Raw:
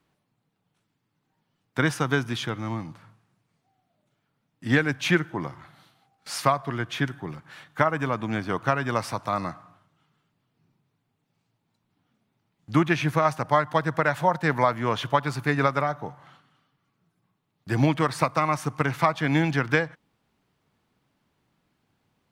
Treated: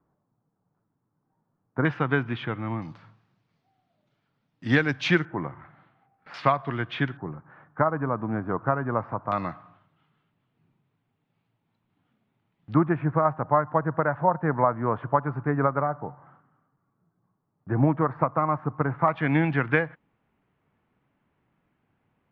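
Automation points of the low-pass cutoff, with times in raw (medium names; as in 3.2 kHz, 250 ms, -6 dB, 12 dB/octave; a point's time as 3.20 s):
low-pass 24 dB/octave
1.3 kHz
from 1.85 s 2.7 kHz
from 2.82 s 5.2 kHz
from 5.25 s 2.1 kHz
from 6.34 s 3.5 kHz
from 7.17 s 1.4 kHz
from 9.32 s 3.4 kHz
from 12.74 s 1.4 kHz
from 19.08 s 2.6 kHz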